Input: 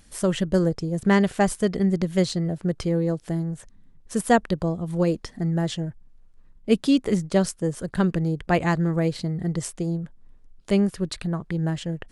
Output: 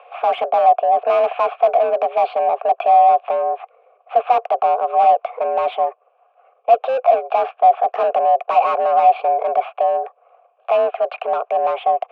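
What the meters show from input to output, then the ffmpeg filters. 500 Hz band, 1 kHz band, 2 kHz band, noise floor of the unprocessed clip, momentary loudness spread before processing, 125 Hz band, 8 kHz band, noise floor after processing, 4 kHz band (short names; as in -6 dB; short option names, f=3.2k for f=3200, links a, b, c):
+9.5 dB, +19.0 dB, -0.5 dB, -53 dBFS, 9 LU, under -35 dB, under -25 dB, -59 dBFS, n/a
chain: -filter_complex "[0:a]highpass=f=240:t=q:w=0.5412,highpass=f=240:t=q:w=1.307,lowpass=f=2.9k:t=q:w=0.5176,lowpass=f=2.9k:t=q:w=0.7071,lowpass=f=2.9k:t=q:w=1.932,afreqshift=250,asplit=2[a][b];[b]highpass=f=720:p=1,volume=33dB,asoftclip=type=tanh:threshold=-5.5dB[c];[a][c]amix=inputs=2:normalize=0,lowpass=f=1.4k:p=1,volume=-6dB,asplit=3[d][e][f];[d]bandpass=f=730:t=q:w=8,volume=0dB[g];[e]bandpass=f=1.09k:t=q:w=8,volume=-6dB[h];[f]bandpass=f=2.44k:t=q:w=8,volume=-9dB[i];[g][h][i]amix=inputs=3:normalize=0,volume=6.5dB"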